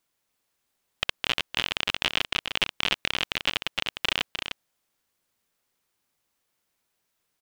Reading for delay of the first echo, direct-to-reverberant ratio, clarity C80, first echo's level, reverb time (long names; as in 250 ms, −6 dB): 303 ms, no reverb audible, no reverb audible, −7.0 dB, no reverb audible